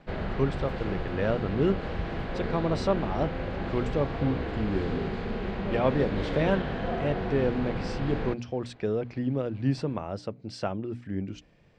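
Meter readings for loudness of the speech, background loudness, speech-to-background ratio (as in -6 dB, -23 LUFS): -30.5 LUFS, -33.5 LUFS, 3.0 dB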